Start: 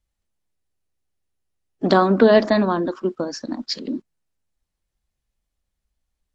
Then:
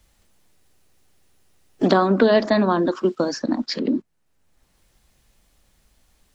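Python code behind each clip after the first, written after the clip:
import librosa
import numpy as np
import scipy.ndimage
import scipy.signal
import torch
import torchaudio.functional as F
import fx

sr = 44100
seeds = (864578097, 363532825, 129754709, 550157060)

y = fx.band_squash(x, sr, depth_pct=70)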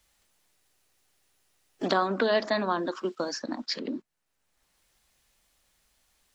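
y = fx.low_shelf(x, sr, hz=470.0, db=-12.0)
y = y * 10.0 ** (-3.5 / 20.0)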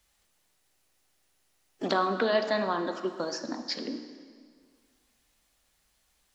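y = fx.rev_plate(x, sr, seeds[0], rt60_s=1.9, hf_ratio=0.85, predelay_ms=0, drr_db=7.0)
y = y * 10.0 ** (-2.0 / 20.0)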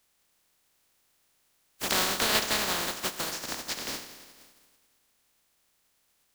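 y = fx.spec_flatten(x, sr, power=0.2)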